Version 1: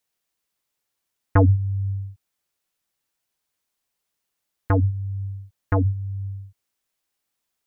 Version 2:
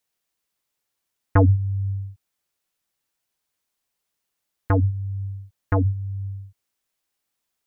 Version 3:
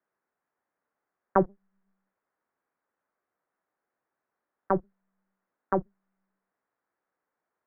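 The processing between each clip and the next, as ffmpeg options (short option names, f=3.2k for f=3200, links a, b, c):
-af anull
-filter_complex "[0:a]asplit=2[a][b];[b]asoftclip=type=tanh:threshold=-21dB,volume=-10dB[c];[a][c]amix=inputs=2:normalize=0,highpass=f=540:t=q:w=0.5412,highpass=f=540:t=q:w=1.307,lowpass=f=2k:t=q:w=0.5176,lowpass=f=2k:t=q:w=0.7071,lowpass=f=2k:t=q:w=1.932,afreqshift=-290,volume=2.5dB"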